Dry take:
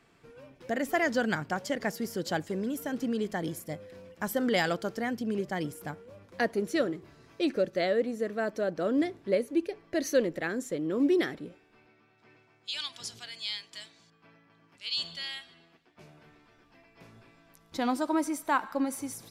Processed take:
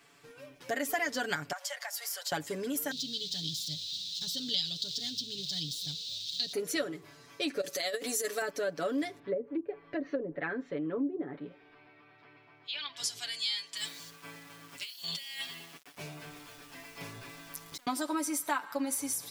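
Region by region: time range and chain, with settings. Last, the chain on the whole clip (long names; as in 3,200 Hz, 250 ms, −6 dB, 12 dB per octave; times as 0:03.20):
0:01.52–0:02.32: Butterworth high-pass 620 Hz 48 dB per octave + downward compressor 3 to 1, threshold −41 dBFS
0:02.91–0:06.53: spike at every zero crossing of −30 dBFS + drawn EQ curve 160 Hz 0 dB, 290 Hz −12 dB, 870 Hz −28 dB, 1,400 Hz −28 dB, 2,200 Hz −20 dB, 3,800 Hz +14 dB, 11,000 Hz −28 dB
0:07.61–0:08.42: bass and treble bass −10 dB, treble +14 dB + compressor whose output falls as the input rises −31 dBFS, ratio −0.5
0:09.19–0:12.97: treble cut that deepens with the level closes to 500 Hz, closed at −23 dBFS + upward compression, threshold −49 dBFS + high-frequency loss of the air 330 metres
0:13.77–0:17.87: low-shelf EQ 260 Hz +6 dB + compressor whose output falls as the input rises −47 dBFS + centre clipping without the shift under −55 dBFS
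whole clip: spectral tilt +2.5 dB per octave; comb filter 7 ms, depth 77%; downward compressor 3 to 1, threshold −30 dBFS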